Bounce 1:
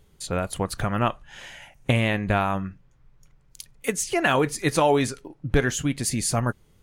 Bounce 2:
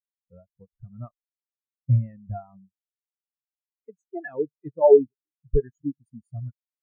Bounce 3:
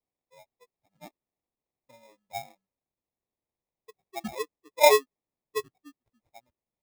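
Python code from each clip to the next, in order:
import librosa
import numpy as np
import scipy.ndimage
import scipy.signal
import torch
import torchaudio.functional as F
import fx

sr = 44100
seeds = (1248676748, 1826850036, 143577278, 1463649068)

y1 = fx.spectral_expand(x, sr, expansion=4.0)
y1 = y1 * 10.0 ** (2.5 / 20.0)
y2 = scipy.signal.sosfilt(scipy.signal.butter(4, 560.0, 'highpass', fs=sr, output='sos'), y1)
y2 = fx.sample_hold(y2, sr, seeds[0], rate_hz=1500.0, jitter_pct=0)
y2 = y2 * 10.0 ** (2.0 / 20.0)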